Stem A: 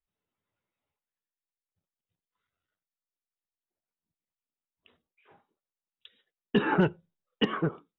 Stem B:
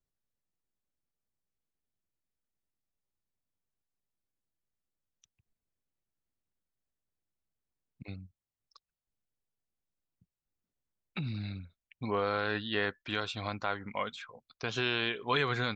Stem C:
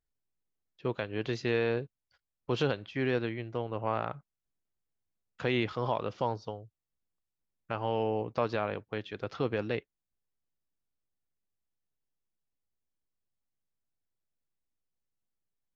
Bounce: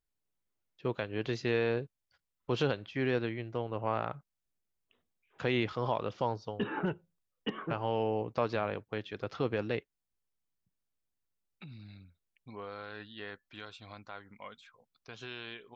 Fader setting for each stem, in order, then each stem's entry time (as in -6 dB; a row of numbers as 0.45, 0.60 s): -9.5, -12.5, -1.0 dB; 0.05, 0.45, 0.00 s